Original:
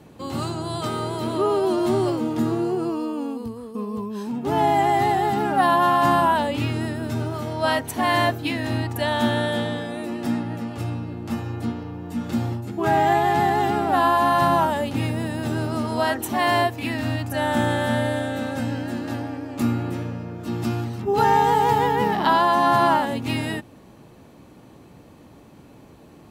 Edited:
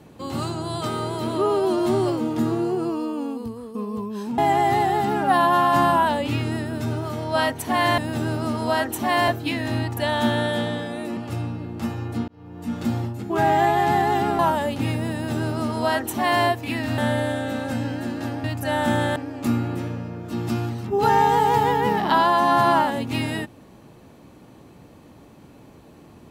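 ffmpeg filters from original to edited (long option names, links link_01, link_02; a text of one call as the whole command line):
ffmpeg -i in.wav -filter_complex "[0:a]asplit=10[link_01][link_02][link_03][link_04][link_05][link_06][link_07][link_08][link_09][link_10];[link_01]atrim=end=4.382[link_11];[link_02]atrim=start=4.668:end=8.272[link_12];[link_03]atrim=start=15.278:end=16.582[link_13];[link_04]atrim=start=8.268:end=10.162[link_14];[link_05]atrim=start=10.648:end=11.76,asetpts=PTS-STARTPTS,afade=type=out:start_time=1.108:duration=0.004:curve=hsin[link_15];[link_06]atrim=start=11.76:end=13.872,asetpts=PTS-STARTPTS,afade=type=in:duration=0.44[link_16];[link_07]atrim=start=14.538:end=17.132[link_17];[link_08]atrim=start=17.848:end=19.312[link_18];[link_09]atrim=start=17.128:end=17.852[link_19];[link_10]atrim=start=19.308[link_20];[link_11][link_12]acrossfade=duration=0.004:curve1=hsin:curve2=hsin[link_21];[link_21][link_13]acrossfade=duration=0.004:curve1=hsin:curve2=hsin[link_22];[link_22][link_14]acrossfade=duration=0.004:curve1=hsin:curve2=hsin[link_23];[link_15][link_16]concat=n=2:v=0:a=1[link_24];[link_23][link_24]acrossfade=duration=0.004:curve1=hsin:curve2=hsin[link_25];[link_25][link_17]acrossfade=duration=0.004:curve1=hsin:curve2=hsin[link_26];[link_26][link_18]acrossfade=duration=0.004:curve1=hsin:curve2=hsin[link_27];[link_27][link_19]acrossfade=duration=0.004:curve1=hsin:curve2=hsin[link_28];[link_28][link_20]acrossfade=duration=0.004:curve1=hsin:curve2=hsin" out.wav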